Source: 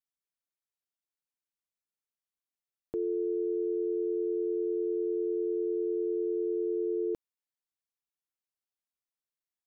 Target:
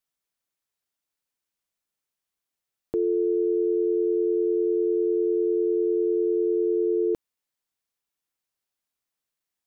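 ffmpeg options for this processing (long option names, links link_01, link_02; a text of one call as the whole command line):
ffmpeg -i in.wav -filter_complex "[0:a]asettb=1/sr,asplit=3[link_01][link_02][link_03];[link_01]atrim=end=2.994[link_04];[link_02]atrim=start=2.99:end=4.67,asetpts=PTS-STARTPTS,afade=type=in:duration=0.004:curve=qsin,afade=type=out:start_time=1.676:duration=0.004:curve=qsin,bandreject=frequency=660:width=12[link_05];[link_03]atrim=start=4.666[link_06];[link_04][link_05]acrossfade=duration=0.004:curve1=hsin:curve2=qsin[link_07];[link_07][link_06]acrossfade=duration=0.004:curve1=qsin:curve2=hsin,volume=7.5dB" out.wav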